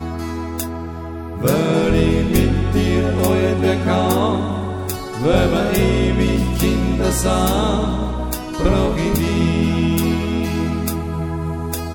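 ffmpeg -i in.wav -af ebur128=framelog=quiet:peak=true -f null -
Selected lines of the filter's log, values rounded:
Integrated loudness:
  I:         -18.4 LUFS
  Threshold: -28.6 LUFS
Loudness range:
  LRA:         2.0 LU
  Threshold: -38.1 LUFS
  LRA low:   -19.1 LUFS
  LRA high:  -17.1 LUFS
True peak:
  Peak:       -3.6 dBFS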